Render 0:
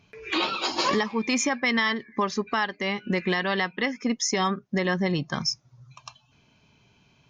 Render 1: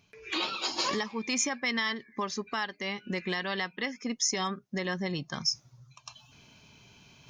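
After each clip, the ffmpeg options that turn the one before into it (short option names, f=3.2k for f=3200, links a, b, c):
-af "highshelf=f=4.3k:g=10.5,areverse,acompressor=mode=upward:threshold=-37dB:ratio=2.5,areverse,volume=-8dB"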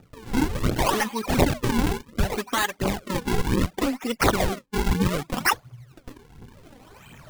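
-af "acrusher=samples=41:mix=1:aa=0.000001:lfo=1:lforange=65.6:lforate=0.67,aphaser=in_gain=1:out_gain=1:delay=4.2:decay=0.57:speed=1.4:type=triangular,volume=7dB"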